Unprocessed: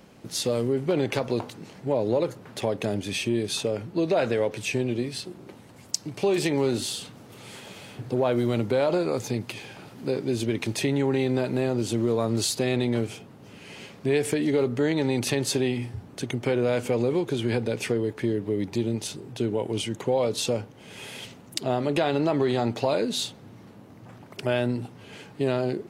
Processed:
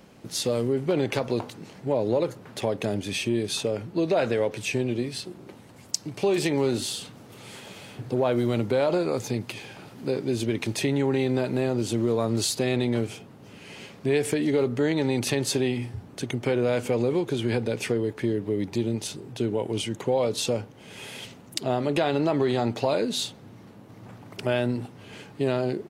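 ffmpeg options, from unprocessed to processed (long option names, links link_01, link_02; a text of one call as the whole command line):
ffmpeg -i in.wav -filter_complex "[0:a]asplit=2[link_01][link_02];[link_02]afade=type=in:start_time=23.52:duration=0.01,afade=type=out:start_time=24.14:duration=0.01,aecho=0:1:360|720|1080|1440|1800|2160|2520|2880|3240|3600|3960|4320:0.668344|0.501258|0.375943|0.281958|0.211468|0.158601|0.118951|0.0892131|0.0669099|0.0501824|0.0376368|0.0282276[link_03];[link_01][link_03]amix=inputs=2:normalize=0" out.wav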